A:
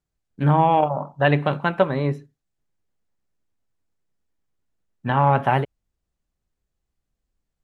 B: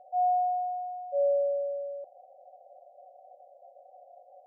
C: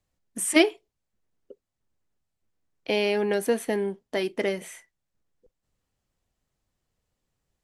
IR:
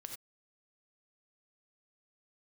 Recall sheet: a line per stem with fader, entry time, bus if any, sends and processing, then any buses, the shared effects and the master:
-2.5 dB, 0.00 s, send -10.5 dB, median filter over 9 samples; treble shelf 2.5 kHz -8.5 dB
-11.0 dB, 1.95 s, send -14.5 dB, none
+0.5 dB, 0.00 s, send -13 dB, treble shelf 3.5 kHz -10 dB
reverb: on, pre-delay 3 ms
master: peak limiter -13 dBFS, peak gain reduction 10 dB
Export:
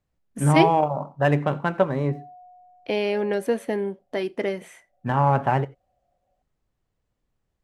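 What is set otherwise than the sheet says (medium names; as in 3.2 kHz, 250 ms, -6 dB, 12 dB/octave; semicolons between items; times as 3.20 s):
stem B -11.0 dB -> -20.5 dB; stem C: send -13 dB -> -20.5 dB; master: missing peak limiter -13 dBFS, peak gain reduction 10 dB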